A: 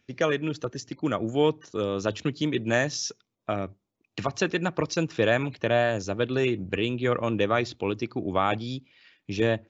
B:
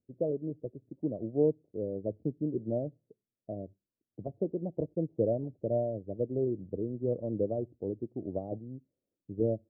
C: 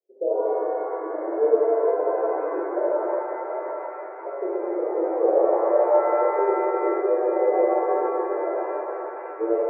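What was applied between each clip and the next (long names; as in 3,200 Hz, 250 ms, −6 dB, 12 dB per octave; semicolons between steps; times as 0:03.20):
Butterworth low-pass 640 Hz 48 dB per octave; expander for the loud parts 1.5 to 1, over −39 dBFS; level −3 dB
Chebyshev band-pass filter 340–820 Hz, order 5; reverb with rising layers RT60 3.6 s, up +7 semitones, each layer −8 dB, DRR −9.5 dB; level +3 dB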